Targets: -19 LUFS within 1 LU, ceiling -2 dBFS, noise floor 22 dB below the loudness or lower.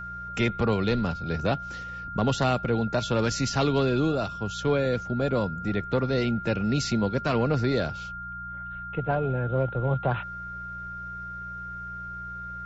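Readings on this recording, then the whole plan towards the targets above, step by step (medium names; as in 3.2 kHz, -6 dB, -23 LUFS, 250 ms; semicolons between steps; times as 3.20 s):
hum 60 Hz; highest harmonic 180 Hz; hum level -43 dBFS; steady tone 1.4 kHz; tone level -35 dBFS; loudness -27.5 LUFS; peak level -13.5 dBFS; loudness target -19.0 LUFS
-> de-hum 60 Hz, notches 3; band-stop 1.4 kHz, Q 30; trim +8.5 dB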